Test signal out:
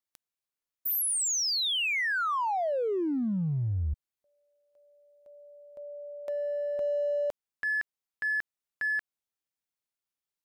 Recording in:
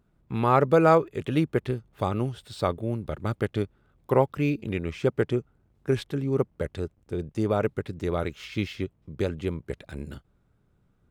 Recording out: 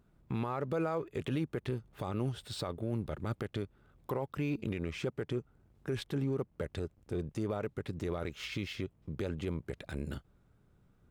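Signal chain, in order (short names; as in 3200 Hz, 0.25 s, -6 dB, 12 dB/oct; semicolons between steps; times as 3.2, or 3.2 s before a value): in parallel at -9.5 dB: crossover distortion -34.5 dBFS; on the sum: compressor 2:1, threshold -29 dBFS; limiter -25.5 dBFS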